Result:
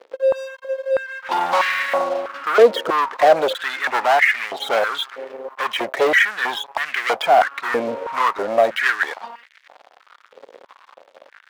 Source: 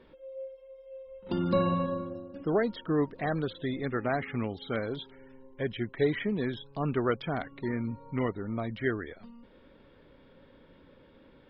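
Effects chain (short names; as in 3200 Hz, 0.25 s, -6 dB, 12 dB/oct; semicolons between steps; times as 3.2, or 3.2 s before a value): sample leveller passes 5; stepped high-pass 3.1 Hz 480–1900 Hz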